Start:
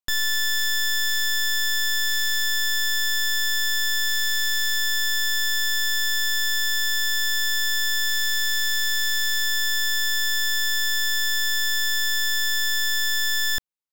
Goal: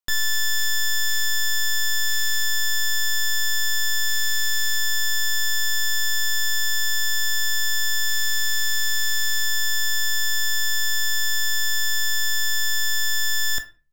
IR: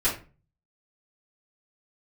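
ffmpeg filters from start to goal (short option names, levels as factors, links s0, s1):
-filter_complex "[0:a]asplit=2[s0][s1];[1:a]atrim=start_sample=2205,lowshelf=f=360:g=-11,adelay=11[s2];[s1][s2]afir=irnorm=-1:irlink=0,volume=0.15[s3];[s0][s3]amix=inputs=2:normalize=0"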